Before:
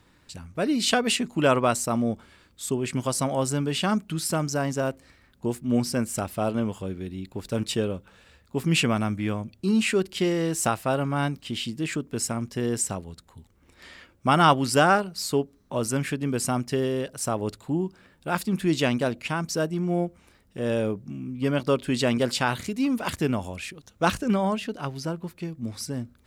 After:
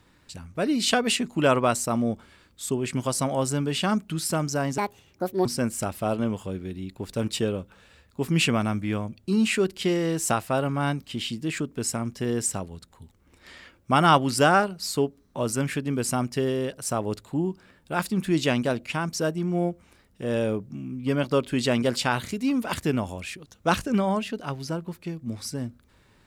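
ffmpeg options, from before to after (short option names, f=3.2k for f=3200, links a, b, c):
-filter_complex "[0:a]asplit=3[a][b][c];[a]atrim=end=4.784[d];[b]atrim=start=4.78:end=5.81,asetpts=PTS-STARTPTS,asetrate=67473,aresample=44100,atrim=end_sample=29688,asetpts=PTS-STARTPTS[e];[c]atrim=start=5.806[f];[d][e]acrossfade=d=0.004:c1=hsin:c2=hsin[g];[g][f]acrossfade=d=0.004:c1=hsin:c2=hsin"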